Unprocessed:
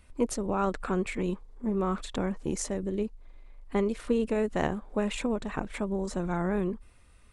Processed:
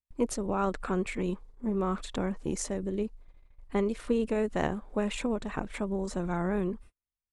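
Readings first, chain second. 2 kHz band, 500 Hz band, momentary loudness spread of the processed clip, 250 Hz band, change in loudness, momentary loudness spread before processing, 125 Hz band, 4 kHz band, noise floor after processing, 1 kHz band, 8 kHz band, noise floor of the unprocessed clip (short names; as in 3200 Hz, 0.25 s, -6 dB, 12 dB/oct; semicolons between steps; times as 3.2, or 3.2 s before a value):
-1.0 dB, -1.0 dB, 6 LU, -1.0 dB, -1.0 dB, 6 LU, -1.0 dB, -1.0 dB, under -85 dBFS, -1.0 dB, -1.0 dB, -56 dBFS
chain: gate -46 dBFS, range -41 dB; gain -1 dB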